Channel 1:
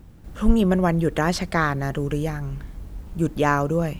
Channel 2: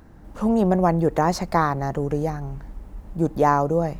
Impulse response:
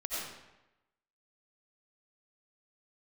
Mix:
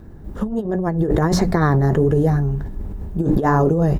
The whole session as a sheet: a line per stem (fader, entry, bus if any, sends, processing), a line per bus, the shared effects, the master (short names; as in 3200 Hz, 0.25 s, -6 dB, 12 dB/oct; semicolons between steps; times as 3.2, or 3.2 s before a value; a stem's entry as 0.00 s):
-13.0 dB, 0.00 s, no send, high shelf 11000 Hz +10 dB
-0.5 dB, 0.9 ms, no send, notches 60/120/180/240/300 Hz; flange 1.4 Hz, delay 8 ms, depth 7.9 ms, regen -45%; sustainer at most 44 dB/s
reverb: off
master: low shelf 480 Hz +11 dB; small resonant body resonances 400/1700/3700 Hz, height 9 dB, ringing for 65 ms; negative-ratio compressor -16 dBFS, ratio -0.5